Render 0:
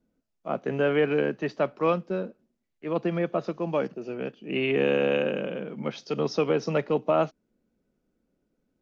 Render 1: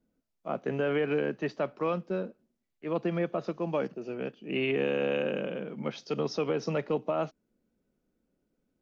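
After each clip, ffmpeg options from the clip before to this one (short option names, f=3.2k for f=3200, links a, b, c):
-af "alimiter=limit=-17dB:level=0:latency=1:release=53,volume=-2.5dB"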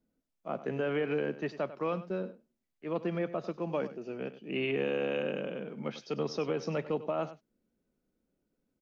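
-af "aecho=1:1:97:0.188,volume=-3dB"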